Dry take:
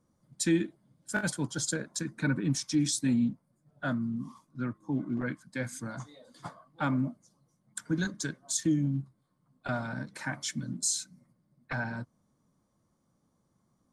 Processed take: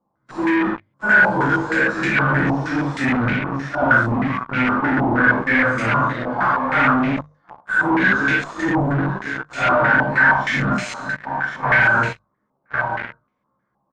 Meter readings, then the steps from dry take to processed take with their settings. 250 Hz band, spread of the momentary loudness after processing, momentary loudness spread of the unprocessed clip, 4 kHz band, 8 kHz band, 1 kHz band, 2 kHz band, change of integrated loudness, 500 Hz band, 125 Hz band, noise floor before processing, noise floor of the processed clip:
+10.0 dB, 10 LU, 16 LU, +6.0 dB, can't be measured, +24.0 dB, +24.0 dB, +14.0 dB, +16.5 dB, +10.5 dB, −74 dBFS, −72 dBFS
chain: random phases in long frames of 200 ms
low-shelf EQ 220 Hz −10 dB
double-tracking delay 15 ms −3 dB
on a send: multi-tap delay 41/43 ms −13.5/−4 dB
on the sum: downward compressor 2.5 to 1, threshold −32 dBFS, peak gain reduction 9 dB
single-tap delay 1,059 ms −13.5 dB
in parallel at −6 dB: fuzz pedal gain 49 dB, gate −50 dBFS
on the sum: mains-hum notches 50/100/150 Hz
low-pass on a step sequencer 6.4 Hz 860–2,300 Hz

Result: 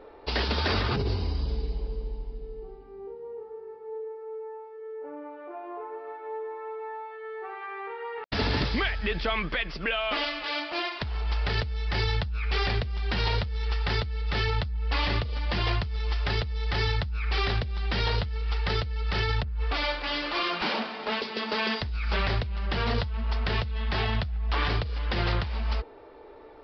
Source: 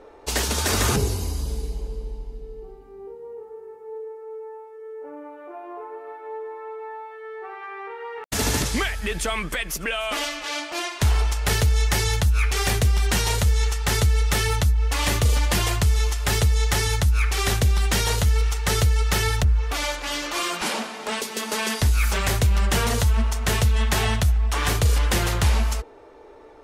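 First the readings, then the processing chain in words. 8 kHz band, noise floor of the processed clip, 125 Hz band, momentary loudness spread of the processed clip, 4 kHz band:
−30.0 dB, −46 dBFS, −7.5 dB, 13 LU, −4.0 dB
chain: downsampling to 11,025 Hz
compressor whose output falls as the input rises −23 dBFS, ratio −1
level −4 dB

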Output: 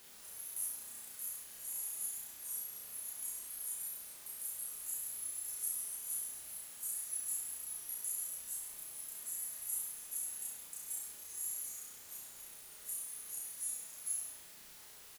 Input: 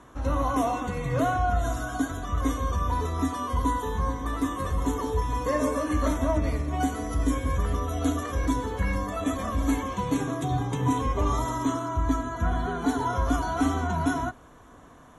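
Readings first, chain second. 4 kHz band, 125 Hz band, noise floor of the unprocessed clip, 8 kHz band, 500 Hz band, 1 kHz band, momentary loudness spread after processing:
−12.5 dB, below −40 dB, −51 dBFS, +4.5 dB, below −35 dB, −36.5 dB, 9 LU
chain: inverse Chebyshev high-pass filter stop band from 2,700 Hz, stop band 70 dB
multi-voice chorus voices 4, 0.59 Hz, delay 30 ms, depth 1.9 ms
bit-depth reduction 12 bits, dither triangular
double-tracking delay 29 ms −11 dB
flutter between parallel walls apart 5.8 metres, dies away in 0.6 s
level +13.5 dB

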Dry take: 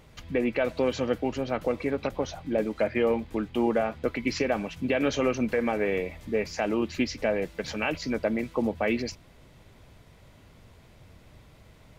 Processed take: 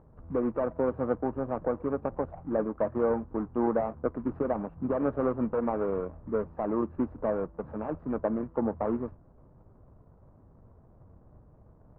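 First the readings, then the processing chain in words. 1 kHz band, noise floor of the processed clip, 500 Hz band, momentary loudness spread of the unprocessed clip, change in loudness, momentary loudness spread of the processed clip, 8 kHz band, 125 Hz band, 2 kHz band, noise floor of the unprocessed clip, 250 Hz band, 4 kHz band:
−1.0 dB, −58 dBFS, −2.5 dB, 5 LU, −2.5 dB, 6 LU, can't be measured, −2.0 dB, −14.5 dB, −55 dBFS, −2.0 dB, below −30 dB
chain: running median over 41 samples
transistor ladder low-pass 1,300 Hz, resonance 50%
level +7.5 dB

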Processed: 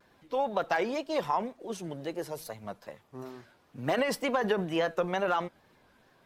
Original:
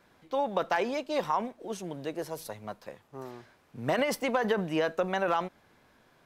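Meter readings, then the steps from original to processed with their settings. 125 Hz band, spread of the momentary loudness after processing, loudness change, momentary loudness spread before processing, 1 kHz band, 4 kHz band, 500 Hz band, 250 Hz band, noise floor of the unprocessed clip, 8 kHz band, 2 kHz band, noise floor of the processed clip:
0.0 dB, 16 LU, −0.5 dB, 16 LU, −0.5 dB, 0.0 dB, −0.5 dB, −0.5 dB, −64 dBFS, −1.0 dB, −0.5 dB, −65 dBFS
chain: spectral magnitudes quantised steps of 15 dB
tape wow and flutter 81 cents

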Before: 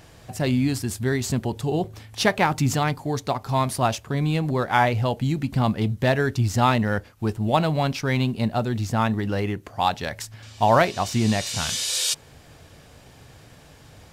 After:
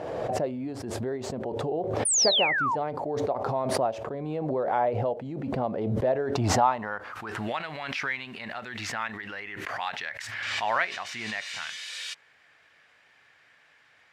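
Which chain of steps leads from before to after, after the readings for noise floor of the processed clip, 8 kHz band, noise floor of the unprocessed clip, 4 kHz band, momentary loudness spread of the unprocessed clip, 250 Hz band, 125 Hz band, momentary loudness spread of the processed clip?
−61 dBFS, −1.0 dB, −50 dBFS, −1.5 dB, 7 LU, −10.0 dB, −12.5 dB, 12 LU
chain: band-pass filter sweep 550 Hz → 1,900 Hz, 0:06.18–0:07.57
sound drawn into the spectrogram fall, 0:02.05–0:02.76, 850–9,900 Hz −26 dBFS
background raised ahead of every attack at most 26 dB per second

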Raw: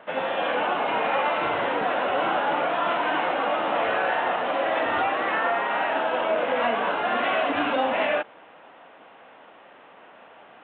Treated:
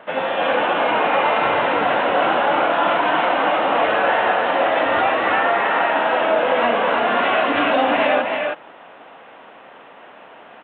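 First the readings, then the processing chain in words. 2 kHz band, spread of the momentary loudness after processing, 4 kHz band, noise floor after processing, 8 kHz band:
+6.5 dB, 2 LU, +6.5 dB, −43 dBFS, can't be measured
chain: single-tap delay 318 ms −3.5 dB
level +5 dB

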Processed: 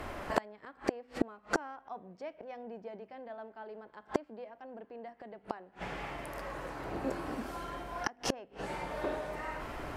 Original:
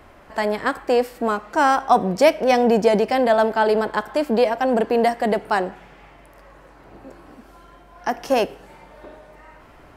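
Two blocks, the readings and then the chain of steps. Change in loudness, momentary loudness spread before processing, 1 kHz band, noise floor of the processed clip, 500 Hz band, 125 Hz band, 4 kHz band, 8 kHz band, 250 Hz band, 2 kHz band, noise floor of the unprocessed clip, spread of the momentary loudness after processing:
−20.0 dB, 9 LU, −19.0 dB, −63 dBFS, −20.5 dB, −12.0 dB, −14.5 dB, can't be measured, −16.0 dB, −15.0 dB, −48 dBFS, 12 LU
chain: mains-hum notches 50/100/150/200/250 Hz
treble cut that deepens with the level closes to 2,700 Hz, closed at −16 dBFS
gate with flip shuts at −20 dBFS, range −35 dB
level +6.5 dB

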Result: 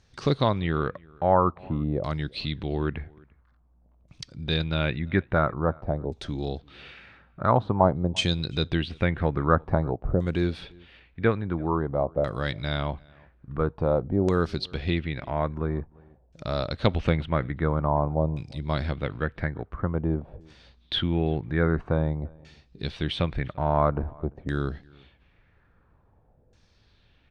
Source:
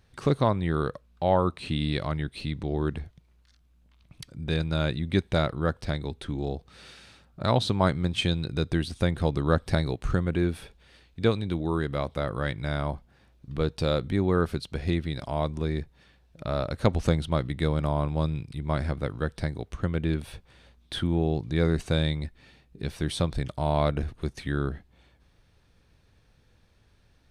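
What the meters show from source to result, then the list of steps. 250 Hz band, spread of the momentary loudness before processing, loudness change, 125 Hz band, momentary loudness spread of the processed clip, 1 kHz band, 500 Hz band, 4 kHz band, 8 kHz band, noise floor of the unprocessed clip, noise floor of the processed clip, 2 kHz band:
+0.5 dB, 9 LU, +1.0 dB, 0.0 dB, 11 LU, +4.0 dB, +1.5 dB, +1.5 dB, can't be measured, −62 dBFS, −62 dBFS, +2.0 dB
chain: auto-filter low-pass saw down 0.49 Hz 560–6,700 Hz
slap from a distant wall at 59 metres, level −26 dB

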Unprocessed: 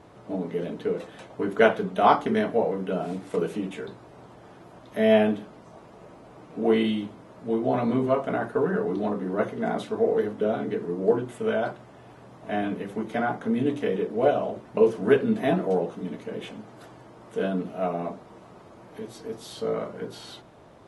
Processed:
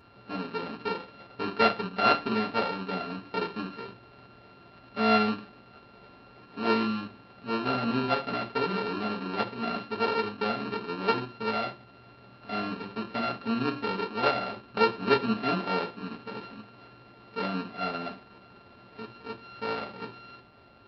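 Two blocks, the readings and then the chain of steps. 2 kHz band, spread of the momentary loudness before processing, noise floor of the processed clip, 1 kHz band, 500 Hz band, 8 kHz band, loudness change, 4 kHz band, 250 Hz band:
+0.5 dB, 17 LU, −54 dBFS, −0.5 dB, −8.0 dB, can't be measured, −3.5 dB, +5.0 dB, −4.5 dB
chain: samples sorted by size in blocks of 32 samples
downsampling to 11,025 Hz
notch comb filter 160 Hz
level −3.5 dB

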